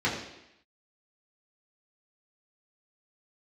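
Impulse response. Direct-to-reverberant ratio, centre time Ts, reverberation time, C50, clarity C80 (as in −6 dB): −7.5 dB, 39 ms, 0.85 s, 5.0 dB, 7.0 dB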